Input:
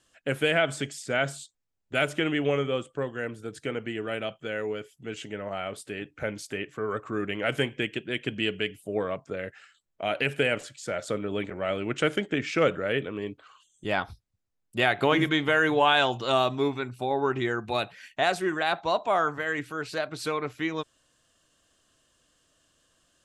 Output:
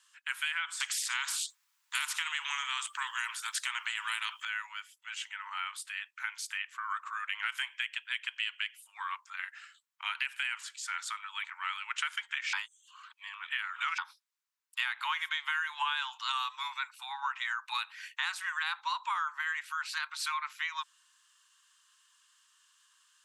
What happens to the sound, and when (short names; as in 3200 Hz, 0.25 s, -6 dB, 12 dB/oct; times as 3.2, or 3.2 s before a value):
0.8–4.45 spectral compressor 2:1
12.53–13.98 reverse
whole clip: steep high-pass 910 Hz 96 dB/oct; compressor 6:1, threshold -32 dBFS; gain +2 dB